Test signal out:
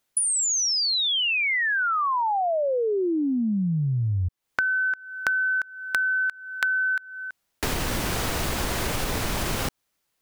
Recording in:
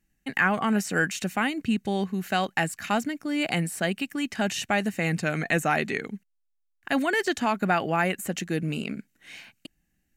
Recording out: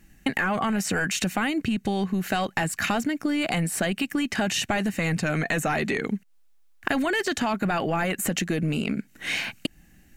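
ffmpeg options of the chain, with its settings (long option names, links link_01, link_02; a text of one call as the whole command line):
ffmpeg -i in.wav -af "highshelf=frequency=3200:gain=-3,apsyclip=24.5dB,acompressor=threshold=-17dB:ratio=16,volume=-5.5dB" out.wav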